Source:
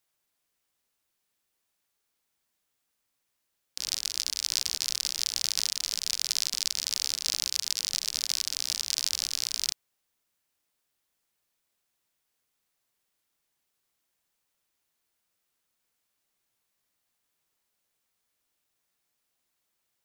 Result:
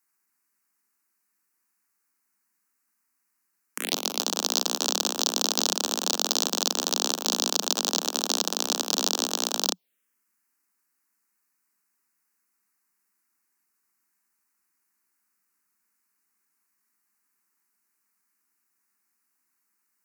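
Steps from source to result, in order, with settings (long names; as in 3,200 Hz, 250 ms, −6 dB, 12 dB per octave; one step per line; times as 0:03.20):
harmonic generator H 4 −16 dB, 7 −11 dB, 8 −24 dB, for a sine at −5.5 dBFS
phaser swept by the level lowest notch 590 Hz, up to 2,100 Hz, full sweep at −30 dBFS
Butterworth high-pass 180 Hz 96 dB per octave
level +5.5 dB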